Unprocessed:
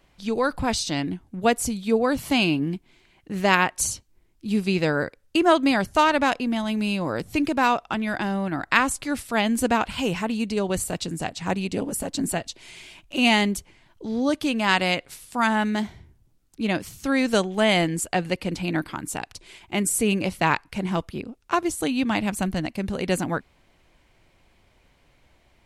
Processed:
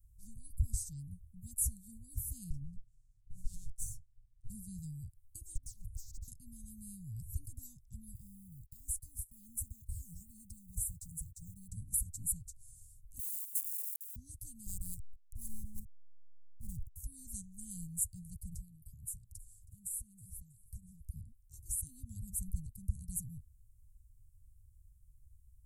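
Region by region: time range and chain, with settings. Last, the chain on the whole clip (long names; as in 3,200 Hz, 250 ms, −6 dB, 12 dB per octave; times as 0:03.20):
0:02.50–0:04.50: lower of the sound and its delayed copy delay 7.1 ms + high-frequency loss of the air 74 metres
0:05.55–0:06.28: high-frequency loss of the air 59 metres + phaser with its sweep stopped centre 1,200 Hz, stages 8 + highs frequency-modulated by the lows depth 0.85 ms
0:08.15–0:11.68: one scale factor per block 7 bits + downward compressor 2.5 to 1, threshold −29 dBFS + noise gate −41 dBFS, range −20 dB
0:13.19–0:14.16: spike at every zero crossing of −18.5 dBFS + Chebyshev high-pass with heavy ripple 870 Hz, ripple 9 dB
0:14.66–0:16.96: high-shelf EQ 7,800 Hz +7.5 dB + slack as between gear wheels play −20.5 dBFS
0:18.57–0:21.05: downward compressor 10 to 1, threshold −32 dBFS + repeating echo 320 ms, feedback 39%, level −21 dB
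whole clip: inverse Chebyshev band-stop filter 370–2,300 Hz, stop band 70 dB; parametric band 3,400 Hz −14 dB 2.5 octaves; level +3 dB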